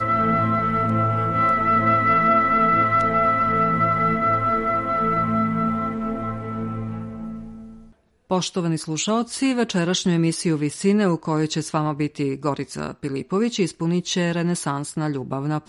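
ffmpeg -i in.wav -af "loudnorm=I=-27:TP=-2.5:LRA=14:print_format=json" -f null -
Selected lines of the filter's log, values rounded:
"input_i" : "-21.6",
"input_tp" : "-7.5",
"input_lra" : "6.3",
"input_thresh" : "-31.9",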